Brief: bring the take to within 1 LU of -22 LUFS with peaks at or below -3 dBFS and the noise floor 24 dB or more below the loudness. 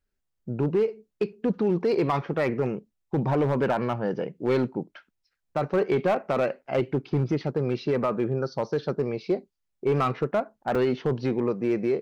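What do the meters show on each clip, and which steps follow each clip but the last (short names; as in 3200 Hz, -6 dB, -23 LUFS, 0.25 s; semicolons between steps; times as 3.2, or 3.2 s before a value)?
clipped 1.1%; flat tops at -17.0 dBFS; dropouts 1; longest dropout 4.3 ms; loudness -27.0 LUFS; peak -17.0 dBFS; loudness target -22.0 LUFS
-> clip repair -17 dBFS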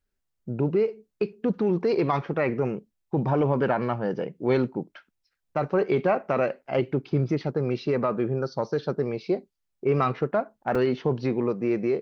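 clipped 0.0%; dropouts 1; longest dropout 4.3 ms
-> interpolate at 10.75, 4.3 ms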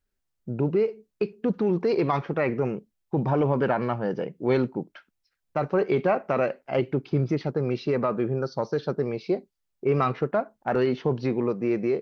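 dropouts 0; loudness -26.5 LUFS; peak -10.5 dBFS; loudness target -22.0 LUFS
-> gain +4.5 dB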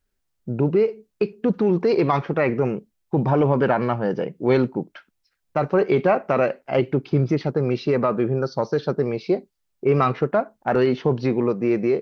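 loudness -22.0 LUFS; peak -6.0 dBFS; noise floor -74 dBFS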